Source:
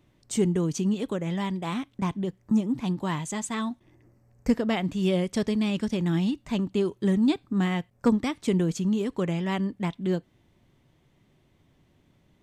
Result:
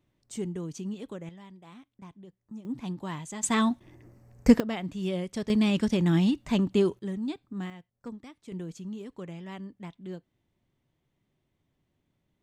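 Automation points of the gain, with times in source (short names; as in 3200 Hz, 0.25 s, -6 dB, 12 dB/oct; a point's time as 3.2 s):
-10 dB
from 1.29 s -19.5 dB
from 2.65 s -7 dB
from 3.43 s +5.5 dB
from 4.6 s -6.5 dB
from 5.5 s +2 dB
from 6.99 s -10.5 dB
from 7.7 s -19 dB
from 8.52 s -13 dB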